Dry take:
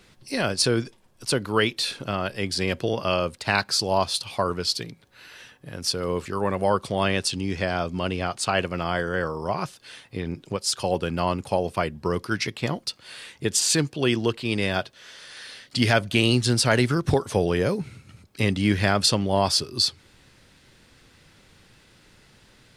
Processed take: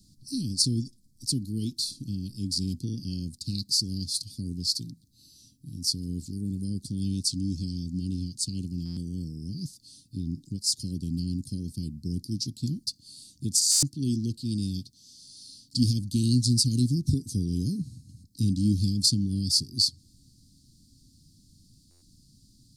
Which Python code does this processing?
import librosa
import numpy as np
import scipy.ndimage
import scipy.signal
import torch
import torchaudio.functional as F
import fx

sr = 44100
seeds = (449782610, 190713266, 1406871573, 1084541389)

y = scipy.signal.sosfilt(scipy.signal.cheby1(4, 1.0, [280.0, 4500.0], 'bandstop', fs=sr, output='sos'), x)
y = fx.buffer_glitch(y, sr, at_s=(8.85, 13.71, 21.9), block=512, repeats=9)